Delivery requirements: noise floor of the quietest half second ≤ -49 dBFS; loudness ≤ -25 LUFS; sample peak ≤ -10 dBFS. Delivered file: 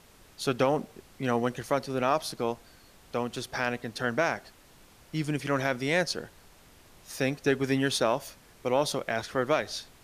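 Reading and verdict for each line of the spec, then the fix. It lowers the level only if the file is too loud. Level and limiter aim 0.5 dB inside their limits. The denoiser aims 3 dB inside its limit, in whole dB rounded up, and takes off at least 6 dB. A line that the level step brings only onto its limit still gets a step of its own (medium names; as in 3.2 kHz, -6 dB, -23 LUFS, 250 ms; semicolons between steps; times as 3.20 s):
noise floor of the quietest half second -56 dBFS: pass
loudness -29.5 LUFS: pass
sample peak -11.5 dBFS: pass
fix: none needed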